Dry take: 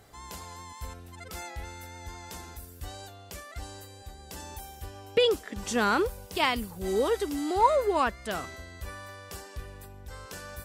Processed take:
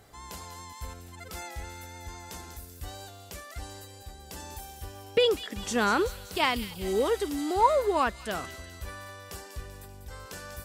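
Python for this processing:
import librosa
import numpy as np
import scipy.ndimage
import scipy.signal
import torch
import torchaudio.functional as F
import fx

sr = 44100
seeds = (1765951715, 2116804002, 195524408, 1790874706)

y = fx.echo_wet_highpass(x, sr, ms=193, feedback_pct=56, hz=3300.0, wet_db=-8)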